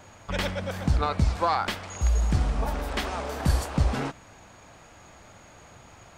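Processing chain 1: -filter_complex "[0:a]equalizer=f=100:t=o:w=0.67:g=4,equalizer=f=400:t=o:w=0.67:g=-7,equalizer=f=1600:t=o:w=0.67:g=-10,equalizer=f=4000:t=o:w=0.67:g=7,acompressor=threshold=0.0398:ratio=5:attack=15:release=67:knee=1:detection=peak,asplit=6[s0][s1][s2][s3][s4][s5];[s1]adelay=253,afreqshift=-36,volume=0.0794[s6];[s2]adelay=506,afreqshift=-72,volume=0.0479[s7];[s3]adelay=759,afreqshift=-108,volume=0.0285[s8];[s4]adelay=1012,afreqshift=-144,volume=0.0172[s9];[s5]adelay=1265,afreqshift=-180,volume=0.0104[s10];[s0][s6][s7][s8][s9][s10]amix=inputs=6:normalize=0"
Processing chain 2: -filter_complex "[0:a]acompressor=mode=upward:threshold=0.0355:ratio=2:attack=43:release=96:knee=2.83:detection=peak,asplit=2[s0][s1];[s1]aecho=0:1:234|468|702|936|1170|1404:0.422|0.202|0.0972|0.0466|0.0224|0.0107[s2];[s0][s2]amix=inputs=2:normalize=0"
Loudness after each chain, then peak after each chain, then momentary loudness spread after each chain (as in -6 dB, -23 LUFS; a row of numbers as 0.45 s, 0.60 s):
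-31.5 LUFS, -26.5 LUFS; -15.5 dBFS, -10.0 dBFS; 20 LU, 14 LU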